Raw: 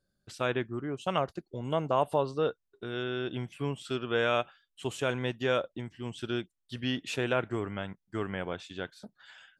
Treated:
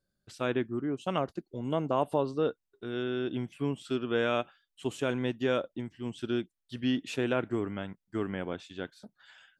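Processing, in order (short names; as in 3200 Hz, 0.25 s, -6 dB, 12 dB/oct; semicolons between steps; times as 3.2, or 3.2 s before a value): dynamic EQ 270 Hz, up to +8 dB, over -45 dBFS, Q 1.2; gain -3 dB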